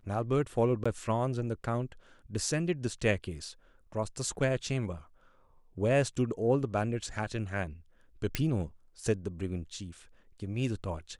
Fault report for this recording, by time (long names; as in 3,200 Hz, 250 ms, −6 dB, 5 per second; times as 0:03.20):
0:00.84–0:00.85: drop-out 15 ms
0:08.35: click −13 dBFS